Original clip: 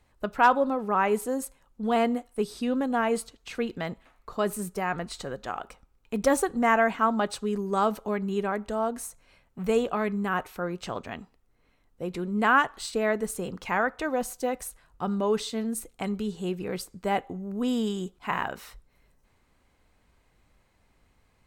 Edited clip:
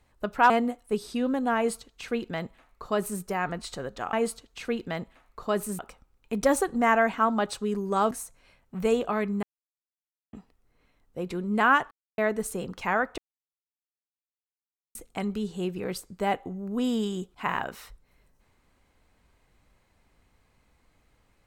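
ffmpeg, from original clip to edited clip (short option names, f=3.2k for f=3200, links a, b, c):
-filter_complex "[0:a]asplit=11[a][b][c][d][e][f][g][h][i][j][k];[a]atrim=end=0.502[l];[b]atrim=start=1.968:end=5.602[m];[c]atrim=start=3.028:end=4.692[n];[d]atrim=start=5.598:end=7.922[o];[e]atrim=start=8.948:end=10.27,asetpts=PTS-STARTPTS,afade=t=out:st=1.318:d=0.004:c=hsin[p];[f]atrim=start=10.27:end=11.17,asetpts=PTS-STARTPTS,volume=0[q];[g]atrim=start=11.17:end=12.75,asetpts=PTS-STARTPTS,afade=t=in:d=0.004:c=hsin,afade=t=out:st=1.576:d=0.004:c=hsin[r];[h]atrim=start=12.75:end=13.02,asetpts=PTS-STARTPTS,volume=0[s];[i]atrim=start=13.02:end=14.02,asetpts=PTS-STARTPTS,afade=t=in:d=0.004:c=hsin,afade=t=out:st=0.996:d=0.004:c=hsin[t];[j]atrim=start=14.02:end=15.79,asetpts=PTS-STARTPTS,volume=0[u];[k]atrim=start=15.79,asetpts=PTS-STARTPTS,afade=t=in:d=0.004:c=hsin[v];[l][m]acrossfade=d=0.004:c1=hsin:c2=hsin[w];[w][n]acrossfade=d=0.004:c1=hsin:c2=hsin[x];[x][o]acrossfade=d=0.004:c1=hsin:c2=hsin[y];[p][q][r][s][t][u][v]concat=n=7:v=0:a=1[z];[y][z]acrossfade=d=0.004:c1=hsin:c2=hsin"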